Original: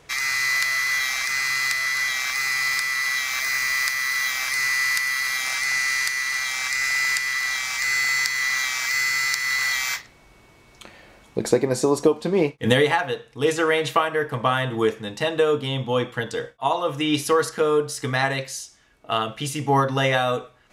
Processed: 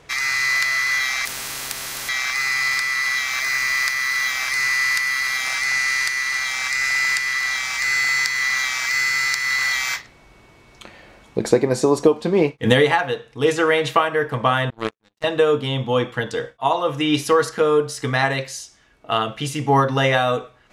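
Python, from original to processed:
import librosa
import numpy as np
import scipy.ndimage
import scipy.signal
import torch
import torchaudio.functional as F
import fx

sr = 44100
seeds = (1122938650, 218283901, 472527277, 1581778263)

y = fx.power_curve(x, sr, exponent=3.0, at=(14.7, 15.24))
y = fx.high_shelf(y, sr, hz=8100.0, db=-7.5)
y = fx.spectral_comp(y, sr, ratio=4.0, at=(1.25, 2.09))
y = F.gain(torch.from_numpy(y), 3.0).numpy()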